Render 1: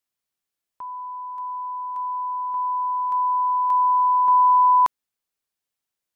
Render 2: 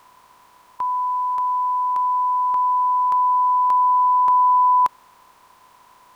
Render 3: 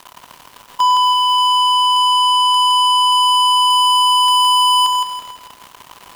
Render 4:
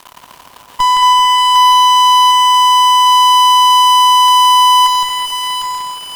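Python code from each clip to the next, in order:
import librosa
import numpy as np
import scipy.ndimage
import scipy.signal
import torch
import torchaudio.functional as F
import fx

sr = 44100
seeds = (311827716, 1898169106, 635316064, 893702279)

y1 = fx.bin_compress(x, sr, power=0.4)
y2 = fx.leveller(y1, sr, passes=5)
y2 = fx.echo_feedback(y2, sr, ms=165, feedback_pct=36, wet_db=-4.5)
y3 = fx.echo_split(y2, sr, split_hz=1100.0, low_ms=224, high_ms=754, feedback_pct=52, wet_db=-4)
y3 = fx.cheby_harmonics(y3, sr, harmonics=(6,), levels_db=(-20,), full_scale_db=-3.5)
y3 = y3 * 10.0 ** (2.0 / 20.0)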